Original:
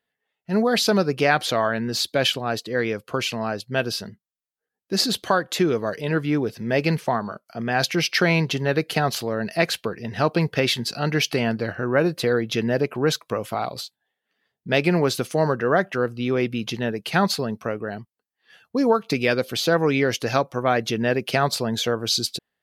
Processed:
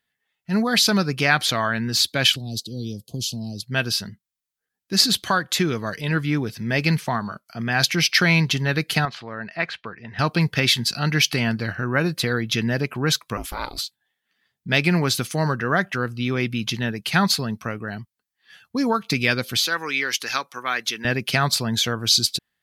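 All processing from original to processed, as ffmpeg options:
-filter_complex "[0:a]asettb=1/sr,asplit=3[s0][s1][s2];[s0]atrim=end=2.364[s3];[s1]atrim=start=2.36:end=3.63,asetpts=PTS-STARTPTS,afade=t=in:d=0.004:c=qsin,afade=t=out:st=1.266:d=0.004:c=qsin,acrossover=split=330|3000[s4][s5][s6];[s5]acompressor=threshold=0.00282:ratio=2:attack=3.2:release=140:knee=2.83:detection=peak[s7];[s4][s7][s6]amix=inputs=3:normalize=0,asuperstop=centerf=1600:order=8:qfactor=0.62[s8];[s2]atrim=start=3.626[s9];[s3][s8]acrossfade=d=0.004:c1=hsin:c2=qsin[s10];[s10][s9]acrossfade=d=0.004:c1=qsin:c2=hsin,asettb=1/sr,asplit=3[s11][s12][s13];[s11]atrim=end=9.054[s14];[s12]atrim=start=9.05:end=10.19,asetpts=PTS-STARTPTS,afade=t=in:d=0.004:c=qsin,afade=t=out:st=1.136:d=0.004:c=qsin,lowpass=1900,lowshelf=f=430:g=-11.5[s15];[s13]atrim=start=10.186[s16];[s14][s15]acrossfade=d=0.004:c1=hsin:c2=qsin[s17];[s17][s16]acrossfade=d=0.004:c1=qsin:c2=hsin,asettb=1/sr,asplit=3[s18][s19][s20];[s18]atrim=end=13.374[s21];[s19]atrim=start=13.37:end=13.78,asetpts=PTS-STARTPTS,afade=t=in:d=0.004:c=qsin,afade=t=out:st=0.406:d=0.004:c=qsin,highshelf=f=4600:g=6.5,aeval=exprs='val(0)*sin(2*PI*160*n/s)':c=same[s22];[s20]atrim=start=13.776[s23];[s21][s22]acrossfade=d=0.004:c1=hsin:c2=qsin[s24];[s24][s23]acrossfade=d=0.004:c1=qsin:c2=hsin,asettb=1/sr,asplit=3[s25][s26][s27];[s25]atrim=end=19.594[s28];[s26]atrim=start=19.59:end=21.05,asetpts=PTS-STARTPTS,afade=t=in:d=0.004:c=qsin,afade=t=out:st=1.456:d=0.004:c=qsin,highpass=500,equalizer=f=650:t=o:w=0.73:g=-9[s29];[s27]atrim=start=21.046[s30];[s28][s29]acrossfade=d=0.004:c1=hsin:c2=qsin[s31];[s31][s30]acrossfade=d=0.004:c1=qsin:c2=hsin,equalizer=f=500:w=0.76:g=-12.5,bandreject=f=2800:w=25,volume=1.88"

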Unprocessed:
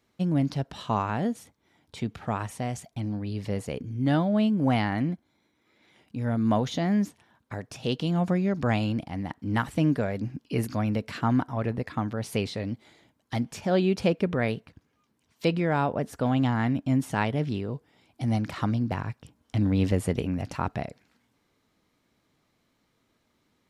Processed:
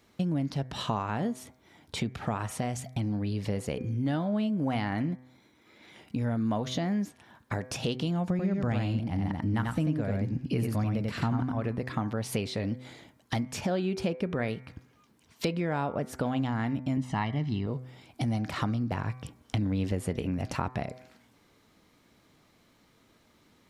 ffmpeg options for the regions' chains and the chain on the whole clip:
-filter_complex "[0:a]asettb=1/sr,asplit=3[s0][s1][s2];[s0]atrim=end=8.304[s3];[s1]atrim=start=8.3:end=11.56,asetpts=PTS-STARTPTS,afade=t=in:d=0.004:c=qsin,afade=t=out:st=3.256:d=0.004:c=qsin,lowshelf=f=200:g=8.5,aecho=1:1:91:0.668,atrim=end_sample=143766[s4];[s2]atrim=start=11.556[s5];[s3][s4]acrossfade=d=0.004:c1=hsin:c2=qsin[s6];[s6][s5]acrossfade=d=0.004:c1=qsin:c2=hsin,asettb=1/sr,asplit=3[s7][s8][s9];[s7]atrim=end=16.974[s10];[s8]atrim=start=16.97:end=17.67,asetpts=PTS-STARTPTS,afade=t=in:d=0.004:c=qsin,afade=t=out:st=0.696:d=0.004:c=qsin,lowpass=5600,aecho=1:1:1:0.68,atrim=end_sample=30870[s11];[s9]atrim=start=17.666[s12];[s10][s11]acrossfade=d=0.004:c1=hsin:c2=qsin[s13];[s13][s12]acrossfade=d=0.004:c1=qsin:c2=hsin,bandreject=f=127.3:t=h:w=4,bandreject=f=254.6:t=h:w=4,bandreject=f=381.9:t=h:w=4,bandreject=f=509.2:t=h:w=4,bandreject=f=636.5:t=h:w=4,bandreject=f=763.8:t=h:w=4,bandreject=f=891.1:t=h:w=4,bandreject=f=1018.4:t=h:w=4,bandreject=f=1145.7:t=h:w=4,bandreject=f=1273:t=h:w=4,bandreject=f=1400.3:t=h:w=4,bandreject=f=1527.6:t=h:w=4,bandreject=f=1654.9:t=h:w=4,bandreject=f=1782.2:t=h:w=4,bandreject=f=1909.5:t=h:w=4,bandreject=f=2036.8:t=h:w=4,bandreject=f=2164.1:t=h:w=4,bandreject=f=2291.4:t=h:w=4,bandreject=f=2418.7:t=h:w=4,acompressor=threshold=0.0141:ratio=4,volume=2.51"

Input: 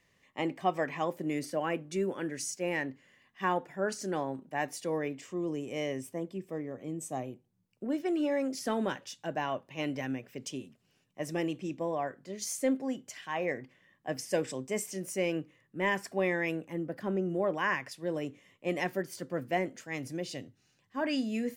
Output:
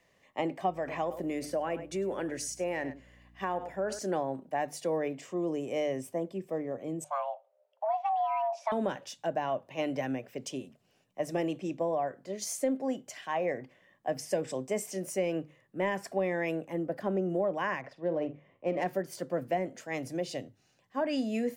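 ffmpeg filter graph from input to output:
-filter_complex "[0:a]asettb=1/sr,asplit=3[s0][s1][s2];[s0]atrim=end=0.704[s3];[s1]atrim=start=0.7:end=3.99,asetpts=PTS-STARTPTS,afade=t=in:d=0.004:c=qsin,afade=t=out:st=3.286:d=0.004:c=qsin,aecho=1:1:100:0.141,atrim=end_sample=145089,acompressor=threshold=0.0251:ratio=2.5:attack=3.2:release=140:knee=1:detection=peak,aeval=exprs='val(0)+0.00126*(sin(2*PI*60*n/s)+sin(2*PI*2*60*n/s)/2+sin(2*PI*3*60*n/s)/3+sin(2*PI*4*60*n/s)/4+sin(2*PI*5*60*n/s)/5)':c=same[s4];[s2]atrim=start=3.986[s5];[s3][s4]acrossfade=d=0.004:c1=hsin:c2=qsin[s6];[s6][s5]acrossfade=d=0.004:c1=qsin:c2=hsin,asettb=1/sr,asplit=3[s7][s8][s9];[s7]atrim=end=7.044[s10];[s8]atrim=start=7.04:end=8.72,asetpts=PTS-STARTPTS,afade=t=in:d=0.004:c=qsin,afade=t=out:st=1.676:d=0.004:c=qsin,afreqshift=420,highpass=490,lowpass=3000[s11];[s9]atrim=start=8.716[s12];[s10][s11]acrossfade=d=0.004:c1=hsin:c2=qsin[s13];[s13][s12]acrossfade=d=0.004:c1=qsin:c2=hsin,asettb=1/sr,asplit=3[s14][s15][s16];[s14]atrim=end=17.794[s17];[s15]atrim=start=17.79:end=18.86,asetpts=PTS-STARTPTS,afade=t=in:d=0.004:c=qsin,afade=t=out:st=1.066:d=0.004:c=qsin,highshelf=f=3400:g=-8.5,asplit=2[s18][s19];[s19]adelay=47,volume=0.299[s20];[s18][s20]amix=inputs=2:normalize=0,atrim=end_sample=47187,adynamicsmooth=sensitivity=7.5:basefreq=2500[s21];[s16]atrim=start=18.856[s22];[s17][s21]acrossfade=d=0.004:c1=hsin:c2=qsin[s23];[s23][s22]acrossfade=d=0.004:c1=qsin:c2=hsin,equalizer=f=650:t=o:w=1:g=9,bandreject=f=50:t=h:w=6,bandreject=f=100:t=h:w=6,bandreject=f=150:t=h:w=6,acrossover=split=250[s24][s25];[s25]acompressor=threshold=0.0398:ratio=5[s26];[s24][s26]amix=inputs=2:normalize=0"

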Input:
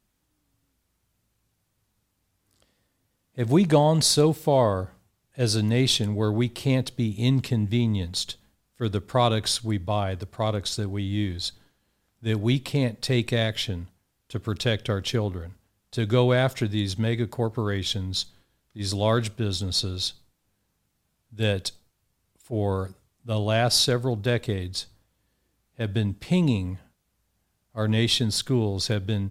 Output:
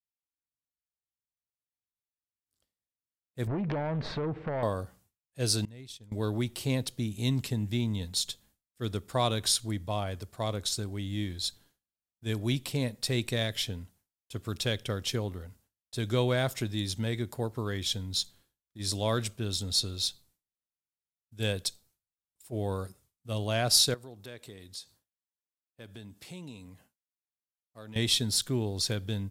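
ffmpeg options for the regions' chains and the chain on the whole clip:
-filter_complex "[0:a]asettb=1/sr,asplit=3[s0][s1][s2];[s0]atrim=end=3.474[s3];[s1]atrim=start=3.47:end=4.63,asetpts=PTS-STARTPTS,afade=t=in:d=0.004:c=qsin,afade=t=out:st=1.156:d=0.004:c=qsin,lowpass=f=2000:w=0.5412,lowpass=f=2000:w=1.3066,acompressor=threshold=0.0355:ratio=10:attack=3.2:release=140:knee=1:detection=peak,aeval=exprs='0.0891*sin(PI/2*2.24*val(0)/0.0891)':c=same[s4];[s2]atrim=start=4.626[s5];[s3][s4]acrossfade=d=0.004:c1=hsin:c2=qsin[s6];[s6][s5]acrossfade=d=0.004:c1=qsin:c2=hsin,asettb=1/sr,asplit=3[s7][s8][s9];[s7]atrim=end=5.654[s10];[s8]atrim=start=5.65:end=6.12,asetpts=PTS-STARTPTS,afade=t=in:d=0.004:c=qsin,afade=t=out:st=0.466:d=0.004:c=qsin,agate=range=0.0224:threshold=0.251:ratio=3:release=100:detection=peak,equalizer=f=74:t=o:w=1.6:g=6.5,acompressor=threshold=0.01:ratio=2.5:attack=3.2:release=140:knee=1:detection=peak[s11];[s9]atrim=start=6.116[s12];[s10][s11]acrossfade=d=0.004:c1=hsin:c2=qsin[s13];[s13][s12]acrossfade=d=0.004:c1=qsin:c2=hsin,asettb=1/sr,asplit=3[s14][s15][s16];[s14]atrim=end=23.944[s17];[s15]atrim=start=23.94:end=27.96,asetpts=PTS-STARTPTS,afade=t=in:d=0.004:c=qsin,afade=t=out:st=4.016:d=0.004:c=qsin,highpass=f=200:p=1,acompressor=threshold=0.00631:ratio=2:attack=3.2:release=140:knee=1:detection=peak[s18];[s16]atrim=start=27.956[s19];[s17][s18]acrossfade=d=0.004:c1=hsin:c2=qsin[s20];[s20][s19]acrossfade=d=0.004:c1=qsin:c2=hsin,highshelf=f=5300:g=11.5,agate=range=0.0224:threshold=0.00282:ratio=3:detection=peak,volume=0.447"

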